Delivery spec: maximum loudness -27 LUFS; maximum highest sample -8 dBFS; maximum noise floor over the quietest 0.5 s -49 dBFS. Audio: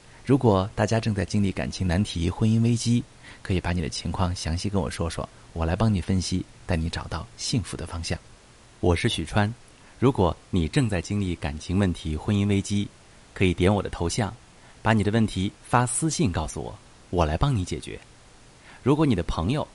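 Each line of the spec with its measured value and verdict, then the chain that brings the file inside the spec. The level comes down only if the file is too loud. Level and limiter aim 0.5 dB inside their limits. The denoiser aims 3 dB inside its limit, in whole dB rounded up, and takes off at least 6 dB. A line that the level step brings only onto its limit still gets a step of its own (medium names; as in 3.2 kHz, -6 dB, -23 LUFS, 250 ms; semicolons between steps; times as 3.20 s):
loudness -25.5 LUFS: fail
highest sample -5.5 dBFS: fail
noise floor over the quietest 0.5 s -51 dBFS: pass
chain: trim -2 dB; peak limiter -8.5 dBFS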